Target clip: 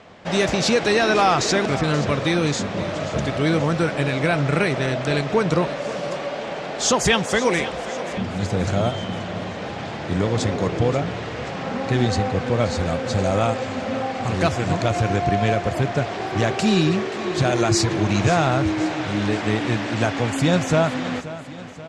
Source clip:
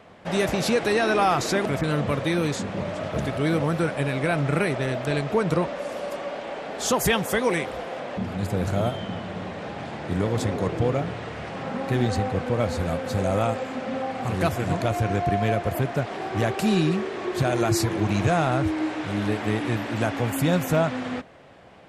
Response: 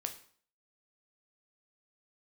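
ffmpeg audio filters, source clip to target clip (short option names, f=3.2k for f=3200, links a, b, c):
-filter_complex "[0:a]lowpass=f=6.9k:w=0.5412,lowpass=f=6.9k:w=1.3066,highshelf=f=4.5k:g=9,asplit=2[a][b];[b]aecho=0:1:530|1060|1590|2120|2650:0.178|0.096|0.0519|0.028|0.0151[c];[a][c]amix=inputs=2:normalize=0,volume=3dB"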